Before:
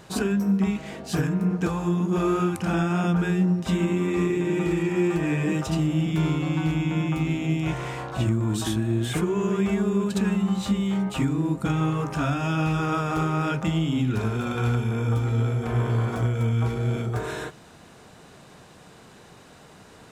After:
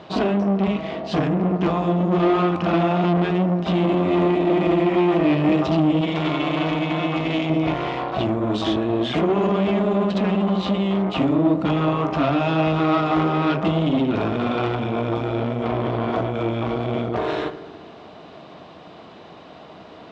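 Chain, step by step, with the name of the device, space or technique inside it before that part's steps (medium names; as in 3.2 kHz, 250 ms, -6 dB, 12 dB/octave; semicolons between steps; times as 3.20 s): analogue delay pedal into a guitar amplifier (bucket-brigade echo 74 ms, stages 1024, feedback 75%, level -15.5 dB; valve stage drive 26 dB, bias 0.75; cabinet simulation 80–4300 Hz, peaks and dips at 120 Hz -8 dB, 310 Hz +6 dB, 660 Hz +9 dB, 1.1 kHz +4 dB, 1.6 kHz -5 dB, 3.2 kHz +3 dB); 6.01–7.50 s: tilt shelf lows -5.5 dB, about 770 Hz; trim +9 dB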